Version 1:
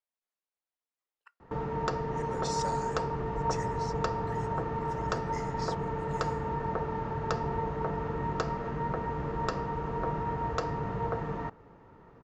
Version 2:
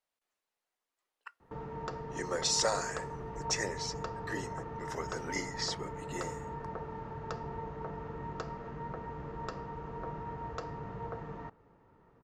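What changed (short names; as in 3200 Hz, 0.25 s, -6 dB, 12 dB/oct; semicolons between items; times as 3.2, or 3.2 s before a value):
speech +10.0 dB; background -8.5 dB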